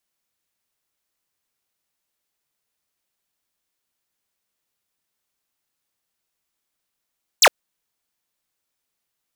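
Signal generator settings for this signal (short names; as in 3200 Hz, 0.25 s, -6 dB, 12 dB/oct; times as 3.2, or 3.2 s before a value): laser zap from 8600 Hz, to 430 Hz, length 0.06 s square, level -10.5 dB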